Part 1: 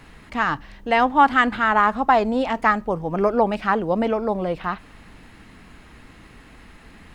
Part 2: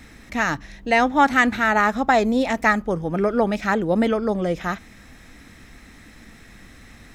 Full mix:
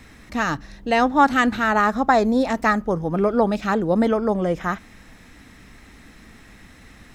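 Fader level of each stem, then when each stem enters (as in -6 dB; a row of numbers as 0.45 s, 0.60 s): -6.0 dB, -2.0 dB; 0.00 s, 0.00 s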